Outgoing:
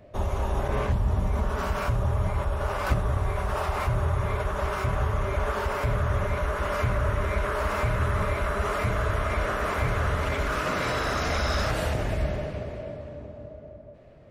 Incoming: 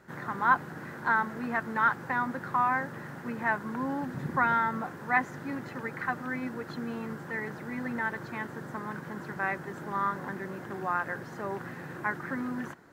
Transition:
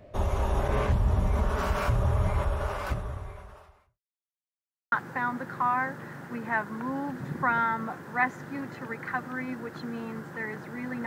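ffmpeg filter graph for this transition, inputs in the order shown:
-filter_complex "[0:a]apad=whole_dur=11.06,atrim=end=11.06,asplit=2[s0][s1];[s0]atrim=end=4,asetpts=PTS-STARTPTS,afade=t=out:st=2.43:d=1.57:c=qua[s2];[s1]atrim=start=4:end=4.92,asetpts=PTS-STARTPTS,volume=0[s3];[1:a]atrim=start=1.86:end=8,asetpts=PTS-STARTPTS,afade=t=in:d=0.004:c=hsin[s4];[s2][s3][s4]concat=n=3:v=0:a=1"

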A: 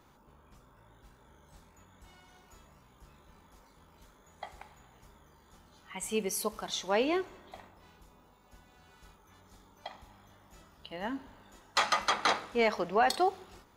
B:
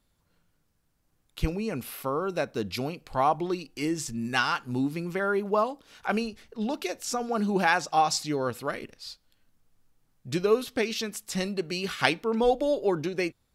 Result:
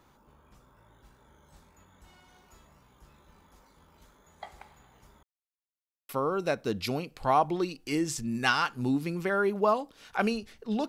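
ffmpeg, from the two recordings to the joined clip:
-filter_complex "[0:a]apad=whole_dur=10.88,atrim=end=10.88,asplit=2[s0][s1];[s0]atrim=end=5.23,asetpts=PTS-STARTPTS,afade=t=out:st=5.226:d=0.004:c=hsin[s2];[s1]atrim=start=5.23:end=6.09,asetpts=PTS-STARTPTS,volume=0[s3];[1:a]atrim=start=1.99:end=6.78,asetpts=PTS-STARTPTS,afade=t=in:d=0.004:c=hsin[s4];[s2][s3][s4]concat=n=3:v=0:a=1"

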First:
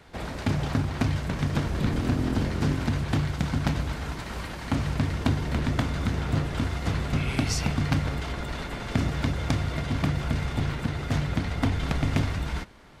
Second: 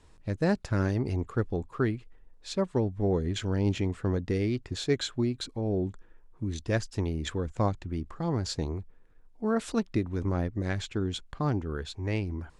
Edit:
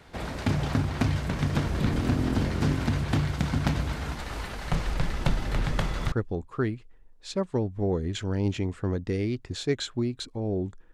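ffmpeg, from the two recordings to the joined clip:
-filter_complex "[0:a]asettb=1/sr,asplit=3[s0][s1][s2];[s0]atrim=end=4.154[s3];[s1]atrim=start=4.15:end=6.12,asetpts=PTS-STARTPTS,afade=t=in:d=0.004:c=qsin,afade=t=out:st=1.966:d=0.004:c=qsin,afreqshift=-110[s4];[s2]atrim=start=6.116[s5];[s3][s4]acrossfade=d=0.004:c1=hsin:c2=qsin[s6];[s6][s5]acrossfade=d=0.004:c1=qsin:c2=hsin,apad=whole_dur=10.93,atrim=end=10.93,atrim=end=6.122[s7];[1:a]atrim=start=1.328:end=6.14[s8];[s7][s8]acrossfade=d=0.004:c1=hsin:c2=hsin"

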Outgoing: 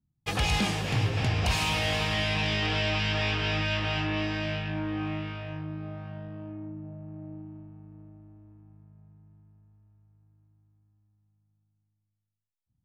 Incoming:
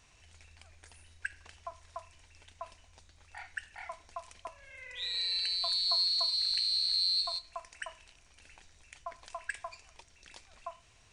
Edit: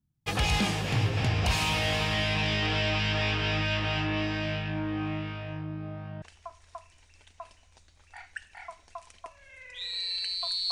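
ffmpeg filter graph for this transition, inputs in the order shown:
-filter_complex "[0:a]apad=whole_dur=10.71,atrim=end=10.71,atrim=end=6.222[s0];[1:a]atrim=start=1.428:end=5.92[s1];[s0][s1]acrossfade=d=0.004:c1=hsin:c2=hsin"

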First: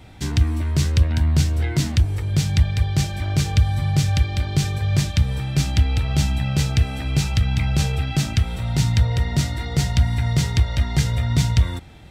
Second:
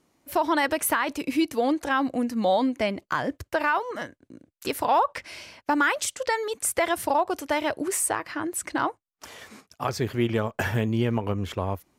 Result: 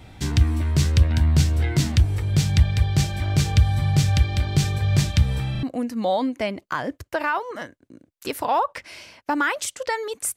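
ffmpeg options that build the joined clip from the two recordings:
-filter_complex "[0:a]apad=whole_dur=10.36,atrim=end=10.36,asplit=3[s0][s1][s2];[s0]atrim=end=5.552[s3];[s1]atrim=start=5.508:end=5.552[s4];[s2]atrim=start=5.508:end=5.552[s5];[1:a]atrim=start=2.028:end=6.76[s6];[s3][s4]acrossfade=d=0.004:c1=hsin:c2=hsin[s7];[s7][s5]acrossfade=d=0.004:c1=hsin:c2=hsin[s8];[s8][s6]acrossfade=d=0.004:c1=hsin:c2=hsin"

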